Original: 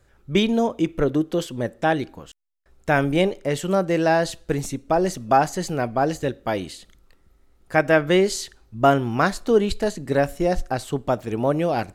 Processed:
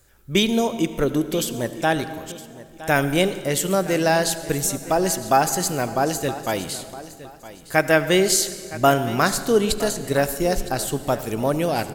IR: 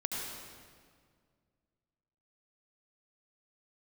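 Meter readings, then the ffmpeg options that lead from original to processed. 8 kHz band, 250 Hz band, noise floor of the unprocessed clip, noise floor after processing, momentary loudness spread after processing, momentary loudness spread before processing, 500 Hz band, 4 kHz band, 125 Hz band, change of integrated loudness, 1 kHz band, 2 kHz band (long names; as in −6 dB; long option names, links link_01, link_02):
+11.5 dB, −0.5 dB, −59 dBFS, −44 dBFS, 11 LU, 8 LU, 0.0 dB, +5.5 dB, −0.5 dB, +0.5 dB, 0.0 dB, +2.0 dB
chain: -filter_complex "[0:a]aemphasis=mode=production:type=75fm,aecho=1:1:964|1928|2892:0.15|0.0389|0.0101,asplit=2[link_01][link_02];[1:a]atrim=start_sample=2205[link_03];[link_02][link_03]afir=irnorm=-1:irlink=0,volume=-13dB[link_04];[link_01][link_04]amix=inputs=2:normalize=0,volume=-1.5dB"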